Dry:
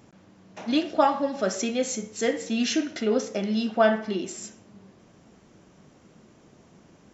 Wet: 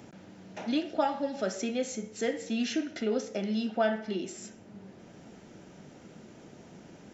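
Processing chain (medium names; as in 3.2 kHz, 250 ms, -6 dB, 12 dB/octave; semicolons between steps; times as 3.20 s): treble shelf 5.4 kHz -4 dB; band-stop 1.1 kHz, Q 5.6; three bands compressed up and down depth 40%; trim -5 dB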